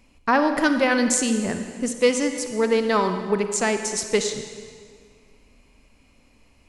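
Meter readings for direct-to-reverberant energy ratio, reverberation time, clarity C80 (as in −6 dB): 7.0 dB, 1.9 s, 8.5 dB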